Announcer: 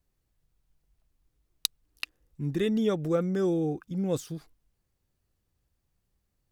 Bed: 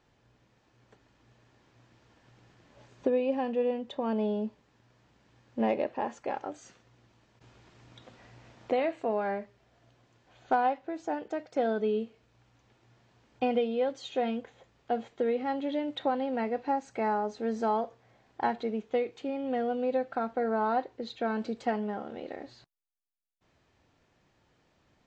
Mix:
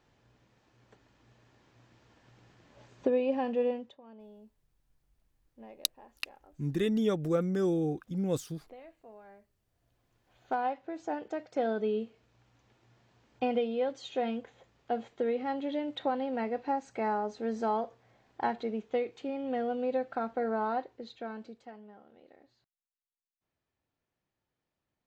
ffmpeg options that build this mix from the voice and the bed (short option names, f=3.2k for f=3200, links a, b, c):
-filter_complex "[0:a]adelay=4200,volume=-2dB[a];[1:a]volume=20dB,afade=t=out:st=3.67:d=0.3:silence=0.0794328,afade=t=in:st=9.64:d=1.45:silence=0.0944061,afade=t=out:st=20.46:d=1.22:silence=0.149624[b];[a][b]amix=inputs=2:normalize=0"